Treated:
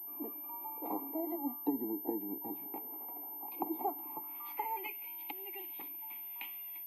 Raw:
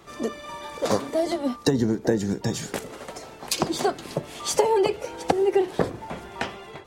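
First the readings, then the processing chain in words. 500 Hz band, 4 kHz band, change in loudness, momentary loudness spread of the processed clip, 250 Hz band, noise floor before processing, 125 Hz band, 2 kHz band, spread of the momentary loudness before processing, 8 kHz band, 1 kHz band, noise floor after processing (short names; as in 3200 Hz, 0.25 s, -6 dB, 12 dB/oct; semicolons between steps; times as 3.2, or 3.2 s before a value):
-22.0 dB, -25.0 dB, -14.0 dB, 5 LU, -13.0 dB, -44 dBFS, -33.0 dB, -16.5 dB, 15 LU, under -40 dB, -12.0 dB, -45 dBFS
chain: vowel filter u; band-pass sweep 660 Hz -> 3000 Hz, 3.81–5.08; pulse-width modulation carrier 13000 Hz; gain +7 dB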